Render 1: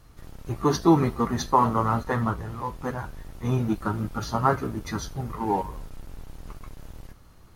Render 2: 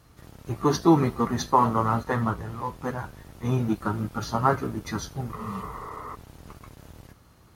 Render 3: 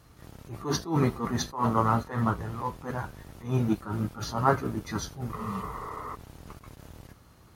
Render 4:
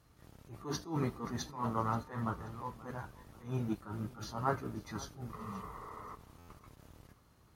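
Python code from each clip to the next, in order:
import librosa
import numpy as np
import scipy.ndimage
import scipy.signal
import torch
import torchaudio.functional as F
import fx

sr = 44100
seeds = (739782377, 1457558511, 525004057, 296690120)

y1 = scipy.signal.sosfilt(scipy.signal.butter(2, 67.0, 'highpass', fs=sr, output='sos'), x)
y1 = fx.spec_repair(y1, sr, seeds[0], start_s=5.41, length_s=0.71, low_hz=220.0, high_hz=2300.0, source='before')
y2 = fx.attack_slew(y1, sr, db_per_s=160.0)
y3 = fx.comb_fb(y2, sr, f0_hz=300.0, decay_s=1.1, harmonics='all', damping=0.0, mix_pct=40)
y3 = fx.echo_feedback(y3, sr, ms=530, feedback_pct=38, wet_db=-19.5)
y3 = fx.buffer_glitch(y3, sr, at_s=(6.38,), block=512, repeats=8)
y3 = y3 * 10.0 ** (-5.5 / 20.0)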